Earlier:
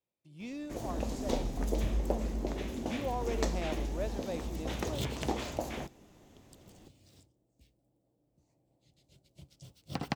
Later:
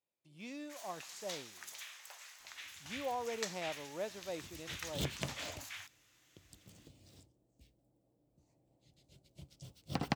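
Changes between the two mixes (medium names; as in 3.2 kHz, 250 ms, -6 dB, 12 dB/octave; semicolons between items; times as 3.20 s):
speech: add bass shelf 400 Hz -8.5 dB; first sound: add high-pass 1.4 kHz 24 dB/octave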